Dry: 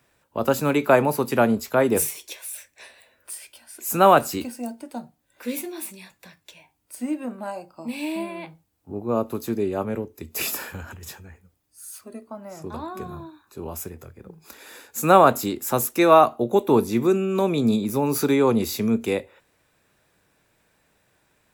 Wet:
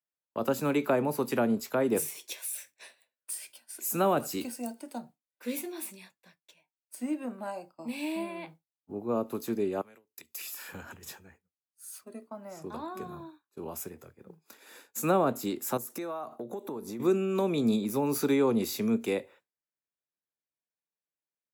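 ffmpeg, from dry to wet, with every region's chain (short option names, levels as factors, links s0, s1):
-filter_complex "[0:a]asettb=1/sr,asplit=3[s0][s1][s2];[s0]atrim=end=2.294[s3];[s1]atrim=start=2.29:end=4.98,asetpts=PTS-STARTPTS,afade=t=in:d=0.004:c=qsin,afade=t=out:st=2.686:d=0.004:c=qsin,highshelf=f=3600:g=5,aecho=1:1:80:0.0668,atrim=end_sample=118629[s4];[s2]atrim=start=4.976[s5];[s3][s4]acrossfade=d=0.004:c1=hsin:c2=qsin[s6];[s6][s5]acrossfade=d=0.004:c1=qsin:c2=hsin,asettb=1/sr,asplit=3[s7][s8][s9];[s7]atrim=end=9.814[s10];[s8]atrim=start=9.81:end=10.69,asetpts=PTS-STARTPTS,afade=t=in:d=0.004:c=qsin,afade=t=out:st=0.876:d=0.004:c=qsin,highpass=44,acompressor=threshold=0.01:ratio=16:attack=3.2:release=140:knee=1:detection=peak,tiltshelf=f=940:g=-9.5[s11];[s9]atrim=start=10.686[s12];[s10][s11]acrossfade=d=0.004:c1=hsin:c2=qsin[s13];[s13][s12]acrossfade=d=0.004:c1=qsin:c2=hsin,asettb=1/sr,asplit=3[s14][s15][s16];[s14]atrim=end=15.774[s17];[s15]atrim=start=15.77:end=17,asetpts=PTS-STARTPTS,afade=t=in:d=0.004:c=qsin,afade=t=out:st=1.226:d=0.004:c=qsin,equalizer=f=2800:w=1.4:g=-7,acompressor=threshold=0.0398:ratio=10:attack=3.2:release=140:knee=1:detection=peak[s18];[s16]atrim=start=16.996[s19];[s17][s18]acrossfade=d=0.004:c1=hsin:c2=qsin[s20];[s20][s19]acrossfade=d=0.004:c1=qsin:c2=hsin,agate=range=0.0224:threshold=0.01:ratio=3:detection=peak,highpass=150,acrossover=split=460[s21][s22];[s22]acompressor=threshold=0.0501:ratio=3[s23];[s21][s23]amix=inputs=2:normalize=0,volume=0.562"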